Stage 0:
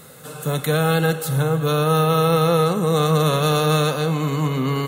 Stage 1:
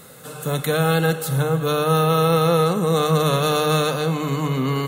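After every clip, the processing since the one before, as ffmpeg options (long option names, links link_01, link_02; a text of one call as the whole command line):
ffmpeg -i in.wav -af "bandreject=frequency=50:width_type=h:width=6,bandreject=frequency=100:width_type=h:width=6,bandreject=frequency=150:width_type=h:width=6" out.wav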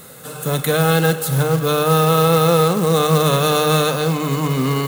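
ffmpeg -i in.wav -af "acrusher=bits=4:mode=log:mix=0:aa=0.000001,highshelf=frequency=9400:gain=3.5,volume=3dB" out.wav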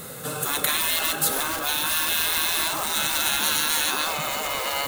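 ffmpeg -i in.wav -af "afftfilt=real='re*lt(hypot(re,im),0.2)':imag='im*lt(hypot(re,im),0.2)':win_size=1024:overlap=0.75,volume=2.5dB" out.wav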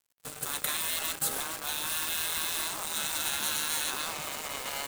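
ffmpeg -i in.wav -af "acrusher=bits=3:mix=0:aa=0.5,equalizer=frequency=8200:width=2.5:gain=4.5,volume=-9dB" out.wav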